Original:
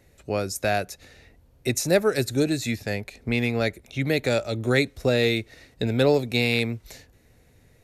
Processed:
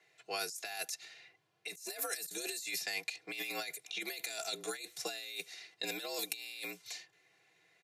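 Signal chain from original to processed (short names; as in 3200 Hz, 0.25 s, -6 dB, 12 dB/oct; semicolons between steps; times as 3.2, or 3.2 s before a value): low-pass opened by the level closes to 2300 Hz, open at -20.5 dBFS; differentiator; comb 3 ms, depth 93%; negative-ratio compressor -43 dBFS, ratio -1; frequency shift +67 Hz; gain +1.5 dB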